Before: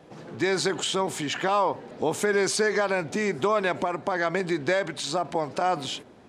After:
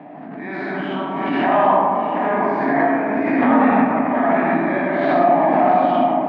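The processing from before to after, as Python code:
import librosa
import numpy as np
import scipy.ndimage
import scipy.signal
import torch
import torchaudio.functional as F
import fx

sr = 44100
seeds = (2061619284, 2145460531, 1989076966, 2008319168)

y = fx.spec_dilate(x, sr, span_ms=120)
y = fx.ring_mod(y, sr, carrier_hz=fx.line((2.31, 44.0), (3.93, 250.0)), at=(2.31, 3.93), fade=0.02)
y = fx.peak_eq(y, sr, hz=510.0, db=-15.0, octaves=0.3)
y = fx.auto_swell(y, sr, attack_ms=231.0)
y = fx.cabinet(y, sr, low_hz=180.0, low_slope=24, high_hz=2100.0, hz=(260.0, 370.0, 680.0, 1400.0), db=(10, -9, 7, -8))
y = fx.tremolo_random(y, sr, seeds[0], hz=3.5, depth_pct=55)
y = y + 10.0 ** (-6.0 / 20.0) * np.pad(y, (int(725 * sr / 1000.0), 0))[:len(y)]
y = fx.rev_freeverb(y, sr, rt60_s=2.5, hf_ratio=0.3, predelay_ms=5, drr_db=-7.0)
y = fx.pre_swell(y, sr, db_per_s=23.0)
y = F.gain(torch.from_numpy(y), -1.0).numpy()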